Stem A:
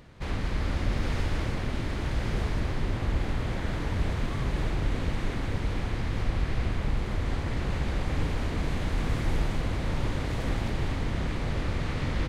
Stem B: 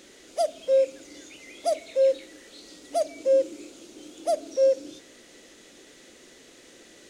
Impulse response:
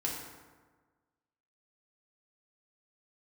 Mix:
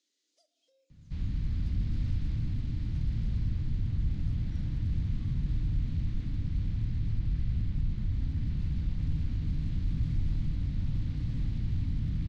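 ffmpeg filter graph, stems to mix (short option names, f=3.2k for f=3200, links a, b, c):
-filter_complex "[0:a]bass=f=250:g=11,treble=f=4k:g=-11,adelay=900,volume=-1dB,asplit=2[a][b];[b]volume=-9dB[c];[1:a]highpass=f=310:w=0.5412,highpass=f=310:w=1.3066,acompressor=threshold=-31dB:ratio=5,volume=-17dB,asplit=2[d][e];[e]volume=-10dB[f];[2:a]atrim=start_sample=2205[g];[c][f]amix=inputs=2:normalize=0[h];[h][g]afir=irnorm=-1:irlink=0[i];[a][d][i]amix=inputs=3:normalize=0,acrossover=split=180 7100:gain=0.2 1 0.0631[j][k][l];[j][k][l]amix=inputs=3:normalize=0,asoftclip=type=hard:threshold=-22dB,firequalizer=gain_entry='entry(100,0);entry(410,-26);entry(670,-28);entry(4200,-7)':delay=0.05:min_phase=1"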